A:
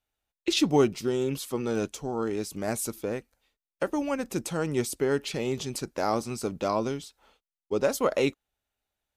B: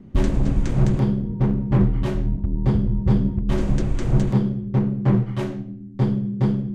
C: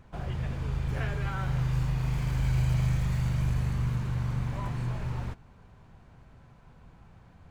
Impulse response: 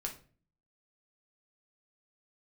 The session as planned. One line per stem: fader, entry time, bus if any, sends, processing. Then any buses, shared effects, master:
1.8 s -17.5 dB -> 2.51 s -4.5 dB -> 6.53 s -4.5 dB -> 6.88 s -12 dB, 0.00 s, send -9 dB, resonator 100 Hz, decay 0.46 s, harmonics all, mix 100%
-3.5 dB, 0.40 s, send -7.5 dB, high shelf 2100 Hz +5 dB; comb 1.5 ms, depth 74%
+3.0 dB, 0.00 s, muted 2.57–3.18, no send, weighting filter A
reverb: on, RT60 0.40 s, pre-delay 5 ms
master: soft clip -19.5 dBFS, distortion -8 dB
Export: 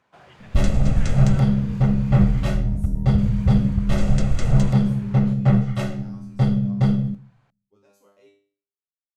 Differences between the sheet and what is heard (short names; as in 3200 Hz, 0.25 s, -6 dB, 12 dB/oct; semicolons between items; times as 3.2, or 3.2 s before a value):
stem A -17.5 dB -> -27.0 dB; stem C +3.0 dB -> -5.0 dB; master: missing soft clip -19.5 dBFS, distortion -8 dB